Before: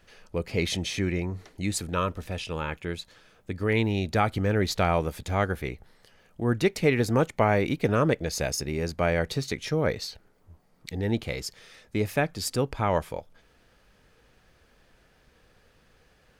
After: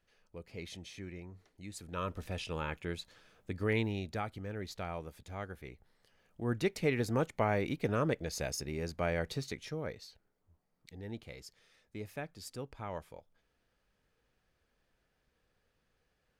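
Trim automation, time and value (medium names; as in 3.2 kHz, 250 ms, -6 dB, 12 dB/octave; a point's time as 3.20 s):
1.72 s -18 dB
2.18 s -6 dB
3.68 s -6 dB
4.38 s -16.5 dB
5.54 s -16.5 dB
6.52 s -8.5 dB
9.41 s -8.5 dB
10.01 s -16.5 dB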